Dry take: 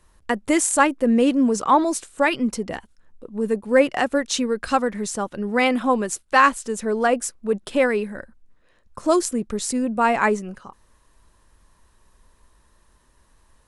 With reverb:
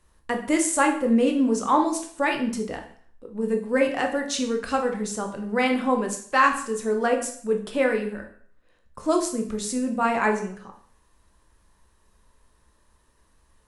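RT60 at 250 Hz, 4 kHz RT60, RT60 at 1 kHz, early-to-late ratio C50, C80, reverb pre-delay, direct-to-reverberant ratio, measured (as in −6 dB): 0.50 s, 0.50 s, 0.55 s, 9.0 dB, 13.0 dB, 7 ms, 3.0 dB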